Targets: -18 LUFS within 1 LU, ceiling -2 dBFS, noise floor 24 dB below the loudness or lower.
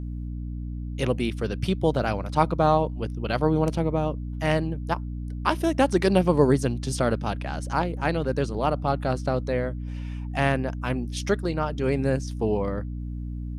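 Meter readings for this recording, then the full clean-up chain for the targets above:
hum 60 Hz; highest harmonic 300 Hz; hum level -30 dBFS; loudness -26.0 LUFS; peak level -5.5 dBFS; loudness target -18.0 LUFS
-> de-hum 60 Hz, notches 5; trim +8 dB; peak limiter -2 dBFS

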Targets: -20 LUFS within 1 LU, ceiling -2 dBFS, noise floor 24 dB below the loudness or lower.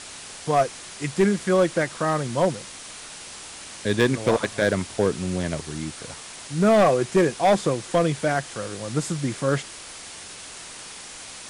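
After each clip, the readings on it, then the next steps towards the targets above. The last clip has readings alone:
clipped samples 0.9%; clipping level -12.0 dBFS; noise floor -40 dBFS; noise floor target -48 dBFS; loudness -23.5 LUFS; peak level -12.0 dBFS; loudness target -20.0 LUFS
-> clip repair -12 dBFS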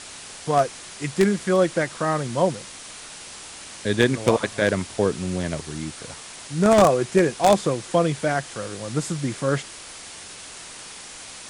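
clipped samples 0.0%; noise floor -40 dBFS; noise floor target -47 dBFS
-> noise reduction 7 dB, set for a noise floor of -40 dBFS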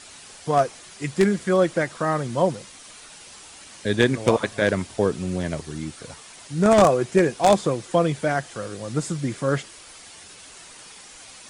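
noise floor -45 dBFS; noise floor target -47 dBFS
-> noise reduction 6 dB, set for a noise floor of -45 dBFS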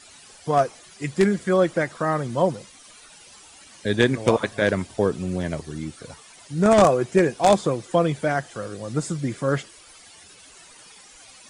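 noise floor -49 dBFS; loudness -22.5 LUFS; peak level -3.0 dBFS; loudness target -20.0 LUFS
-> trim +2.5 dB; peak limiter -2 dBFS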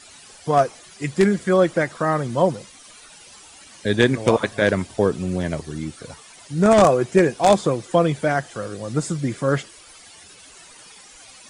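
loudness -20.5 LUFS; peak level -2.0 dBFS; noise floor -46 dBFS

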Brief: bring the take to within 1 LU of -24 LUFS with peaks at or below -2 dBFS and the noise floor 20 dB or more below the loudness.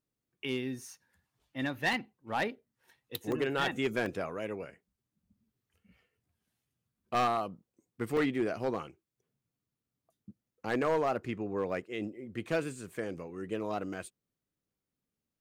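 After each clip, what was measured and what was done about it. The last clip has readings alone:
clipped samples 0.7%; clipping level -23.5 dBFS; dropouts 4; longest dropout 2.0 ms; loudness -34.5 LUFS; peak level -23.5 dBFS; loudness target -24.0 LUFS
-> clip repair -23.5 dBFS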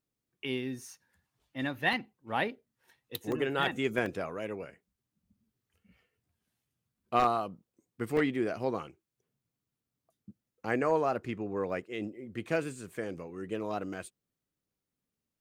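clipped samples 0.0%; dropouts 4; longest dropout 2.0 ms
-> interpolate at 1.93/3.32/4.06/8.17 s, 2 ms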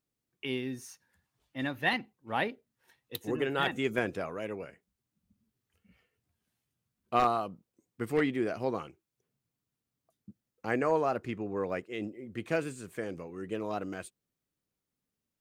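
dropouts 0; loudness -33.5 LUFS; peak level -14.5 dBFS; loudness target -24.0 LUFS
-> trim +9.5 dB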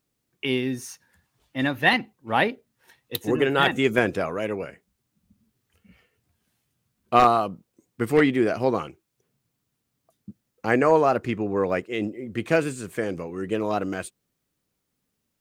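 loudness -24.0 LUFS; peak level -5.0 dBFS; noise floor -78 dBFS

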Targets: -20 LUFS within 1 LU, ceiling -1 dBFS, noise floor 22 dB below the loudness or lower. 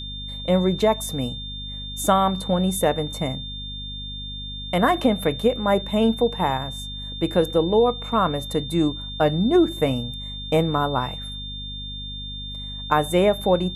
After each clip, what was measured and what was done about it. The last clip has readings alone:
hum 50 Hz; highest harmonic 250 Hz; hum level -34 dBFS; steady tone 3.6 kHz; tone level -33 dBFS; loudness -23.0 LUFS; peak level -4.5 dBFS; loudness target -20.0 LUFS
-> de-hum 50 Hz, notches 5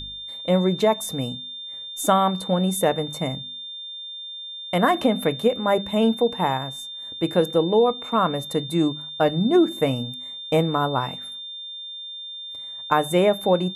hum not found; steady tone 3.6 kHz; tone level -33 dBFS
-> band-stop 3.6 kHz, Q 30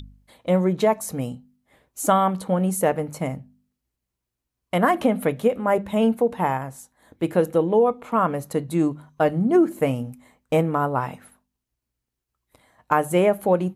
steady tone not found; loudness -22.5 LUFS; peak level -4.5 dBFS; loudness target -20.0 LUFS
-> trim +2.5 dB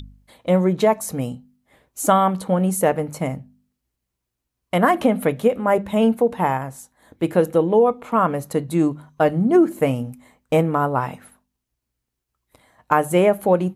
loudness -20.0 LUFS; peak level -2.0 dBFS; noise floor -81 dBFS

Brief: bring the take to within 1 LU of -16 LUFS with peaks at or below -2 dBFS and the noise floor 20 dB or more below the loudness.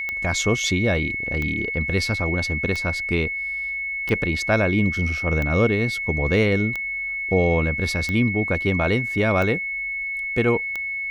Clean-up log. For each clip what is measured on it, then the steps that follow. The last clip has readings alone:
clicks found 9; steady tone 2.2 kHz; tone level -25 dBFS; loudness -22.0 LUFS; peak level -5.0 dBFS; loudness target -16.0 LUFS
-> de-click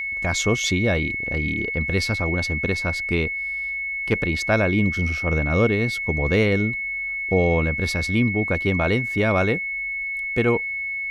clicks found 0; steady tone 2.2 kHz; tone level -25 dBFS
-> band-stop 2.2 kHz, Q 30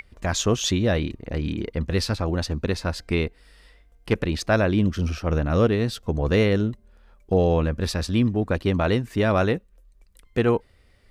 steady tone not found; loudness -24.0 LUFS; peak level -5.0 dBFS; loudness target -16.0 LUFS
-> trim +8 dB; peak limiter -2 dBFS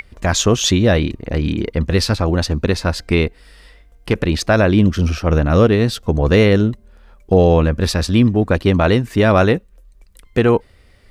loudness -16.0 LUFS; peak level -2.0 dBFS; noise floor -49 dBFS

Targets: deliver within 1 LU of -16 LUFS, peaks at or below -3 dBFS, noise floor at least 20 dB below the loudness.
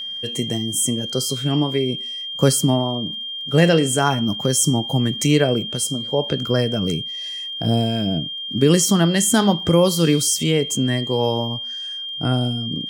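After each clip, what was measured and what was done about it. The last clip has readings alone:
tick rate 21 per s; steady tone 3.2 kHz; tone level -27 dBFS; loudness -19.5 LUFS; peak level -1.5 dBFS; loudness target -16.0 LUFS
-> de-click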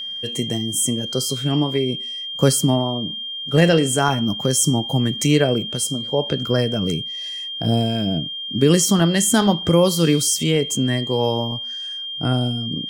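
tick rate 0.39 per s; steady tone 3.2 kHz; tone level -27 dBFS
-> band-stop 3.2 kHz, Q 30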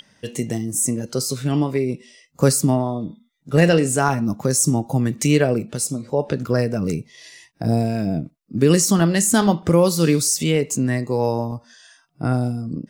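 steady tone not found; loudness -20.0 LUFS; peak level -2.0 dBFS; loudness target -16.0 LUFS
-> trim +4 dB; peak limiter -3 dBFS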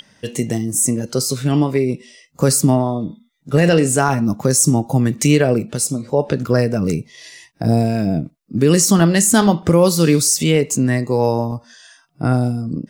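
loudness -16.5 LUFS; peak level -3.0 dBFS; noise floor -57 dBFS

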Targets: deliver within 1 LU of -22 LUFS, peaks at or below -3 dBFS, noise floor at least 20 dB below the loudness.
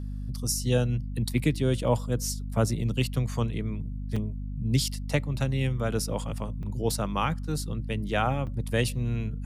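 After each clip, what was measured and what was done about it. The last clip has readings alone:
dropouts 3; longest dropout 4.8 ms; hum 50 Hz; highest harmonic 250 Hz; hum level -31 dBFS; loudness -29.0 LUFS; peak level -11.5 dBFS; loudness target -22.0 LUFS
-> interpolate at 4.16/6.63/8.47 s, 4.8 ms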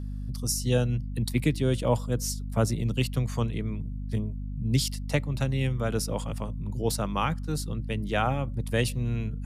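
dropouts 0; hum 50 Hz; highest harmonic 250 Hz; hum level -31 dBFS
-> hum notches 50/100/150/200/250 Hz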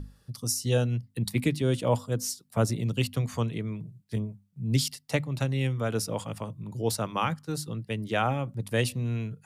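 hum not found; loudness -29.5 LUFS; peak level -12.5 dBFS; loudness target -22.0 LUFS
-> trim +7.5 dB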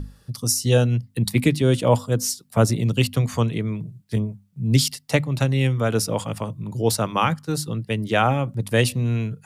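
loudness -22.0 LUFS; peak level -5.0 dBFS; noise floor -57 dBFS

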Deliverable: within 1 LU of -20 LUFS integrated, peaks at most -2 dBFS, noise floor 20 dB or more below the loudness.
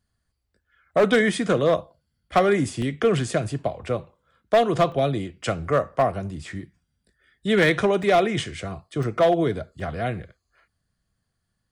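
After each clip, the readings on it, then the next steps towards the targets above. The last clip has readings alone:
clipped samples 0.9%; clipping level -12.0 dBFS; dropouts 5; longest dropout 2.6 ms; loudness -23.0 LUFS; peak level -12.0 dBFS; loudness target -20.0 LUFS
-> clip repair -12 dBFS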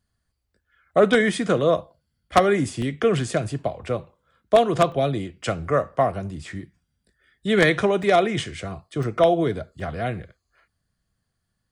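clipped samples 0.0%; dropouts 5; longest dropout 2.6 ms
-> interpolate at 2.82/4.92/8.03/9.03/9.80 s, 2.6 ms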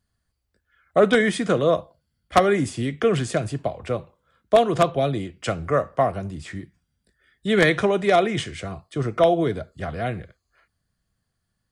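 dropouts 0; loudness -22.5 LUFS; peak level -3.0 dBFS; loudness target -20.0 LUFS
-> trim +2.5 dB; peak limiter -2 dBFS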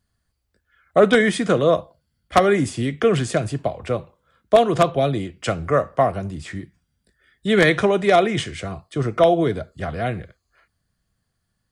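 loudness -20.0 LUFS; peak level -2.0 dBFS; noise floor -75 dBFS

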